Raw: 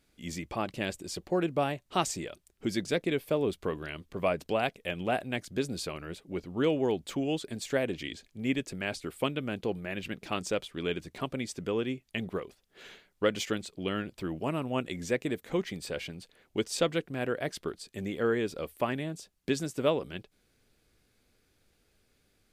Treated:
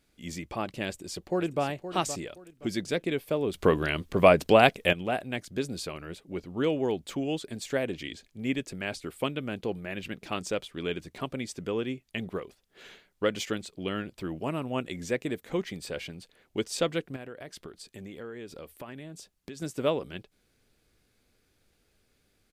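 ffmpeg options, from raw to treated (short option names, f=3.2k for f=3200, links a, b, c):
-filter_complex "[0:a]asplit=2[a][b];[b]afade=t=in:st=0.88:d=0.01,afade=t=out:st=1.63:d=0.01,aecho=0:1:520|1040|1560:0.298538|0.0746346|0.0186586[c];[a][c]amix=inputs=2:normalize=0,asettb=1/sr,asplit=3[d][e][f];[d]atrim=end=17.164[g];[e]atrim=start=17.16:end=19.62,asetpts=PTS-STARTPTS,afade=t=in:d=0.004:c=qsin,afade=t=out:st=2.456:d=0.004:c=qsin,acompressor=threshold=-40dB:ratio=4:attack=3.2:release=140:knee=1:detection=peak[h];[f]atrim=start=19.616[i];[g][h]acrossfade=d=0.004:c1=hsin:c2=qsin[j];[j][i]acrossfade=d=0.004:c1=qsin:c2=hsin,asplit=3[k][l][m];[k]atrim=end=3.542[n];[l]atrim=start=3.538:end=4.932,asetpts=PTS-STARTPTS,volume=10.5dB[o];[m]atrim=start=4.928[p];[n][o]acrossfade=d=0.004:c1=hsin:c2=hsin[q];[q][p]acrossfade=d=0.004:c1=hsin:c2=hsin"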